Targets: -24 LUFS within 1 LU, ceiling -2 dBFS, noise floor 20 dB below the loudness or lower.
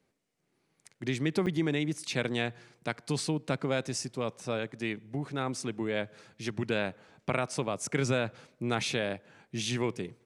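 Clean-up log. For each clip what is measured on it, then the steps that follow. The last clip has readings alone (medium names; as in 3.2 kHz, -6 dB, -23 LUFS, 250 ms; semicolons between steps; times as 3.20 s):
dropouts 1; longest dropout 7.3 ms; loudness -33.0 LUFS; peak level -12.5 dBFS; loudness target -24.0 LUFS
-> interpolate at 1.46 s, 7.3 ms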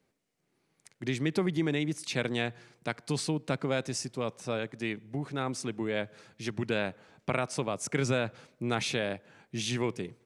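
dropouts 0; loudness -33.0 LUFS; peak level -12.5 dBFS; loudness target -24.0 LUFS
-> trim +9 dB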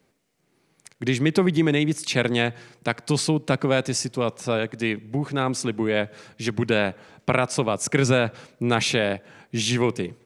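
loudness -24.0 LUFS; peak level -3.5 dBFS; noise floor -67 dBFS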